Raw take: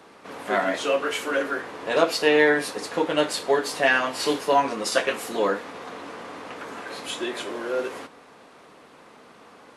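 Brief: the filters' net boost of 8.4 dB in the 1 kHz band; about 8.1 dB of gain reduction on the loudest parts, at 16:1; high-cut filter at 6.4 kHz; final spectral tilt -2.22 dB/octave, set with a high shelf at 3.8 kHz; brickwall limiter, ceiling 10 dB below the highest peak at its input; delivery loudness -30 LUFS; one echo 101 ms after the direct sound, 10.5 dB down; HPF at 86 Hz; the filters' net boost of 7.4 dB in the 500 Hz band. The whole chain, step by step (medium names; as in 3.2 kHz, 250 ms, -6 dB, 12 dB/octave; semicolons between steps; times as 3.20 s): high-pass 86 Hz; low-pass 6.4 kHz; peaking EQ 500 Hz +6.5 dB; peaking EQ 1 kHz +8 dB; treble shelf 3.8 kHz +5.5 dB; compression 16:1, threshold -14 dBFS; peak limiter -15 dBFS; delay 101 ms -10.5 dB; trim -5 dB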